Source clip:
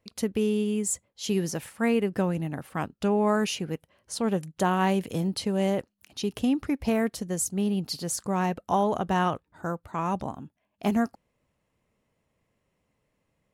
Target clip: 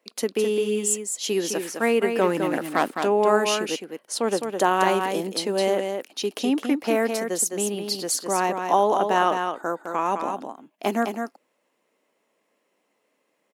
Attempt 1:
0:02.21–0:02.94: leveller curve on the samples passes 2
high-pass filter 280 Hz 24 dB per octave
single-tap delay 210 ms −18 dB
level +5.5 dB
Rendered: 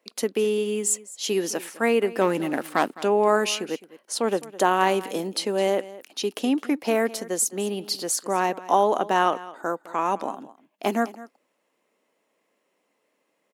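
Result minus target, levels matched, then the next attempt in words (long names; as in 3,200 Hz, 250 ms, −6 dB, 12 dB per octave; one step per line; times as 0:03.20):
echo-to-direct −12 dB
0:02.21–0:02.94: leveller curve on the samples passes 2
high-pass filter 280 Hz 24 dB per octave
single-tap delay 210 ms −6 dB
level +5.5 dB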